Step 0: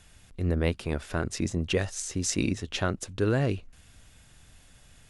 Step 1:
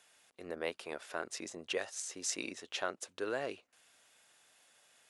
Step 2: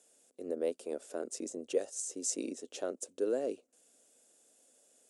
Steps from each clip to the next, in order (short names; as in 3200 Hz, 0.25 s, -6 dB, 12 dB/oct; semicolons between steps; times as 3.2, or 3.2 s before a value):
Chebyshev high-pass 570 Hz, order 2; gain -5.5 dB
graphic EQ 125/250/500/1000/2000/4000/8000 Hz -9/+12/+11/-8/-9/-5/+11 dB; gain -4.5 dB